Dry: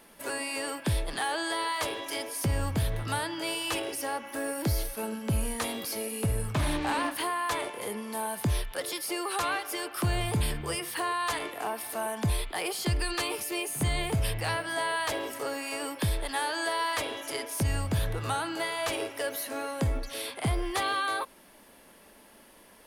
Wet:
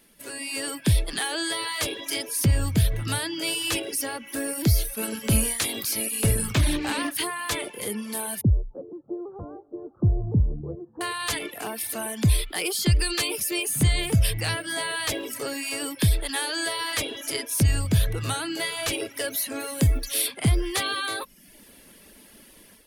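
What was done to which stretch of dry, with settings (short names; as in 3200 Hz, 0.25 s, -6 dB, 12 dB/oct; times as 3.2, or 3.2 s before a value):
5.01–6.57 spectral limiter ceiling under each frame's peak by 12 dB
8.41–11.01 Gaussian blur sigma 13 samples
19.59–20.27 high shelf 12000 Hz -> 7200 Hz +11 dB
whole clip: reverb removal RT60 0.59 s; bell 880 Hz -12 dB 1.8 oct; AGC gain up to 9 dB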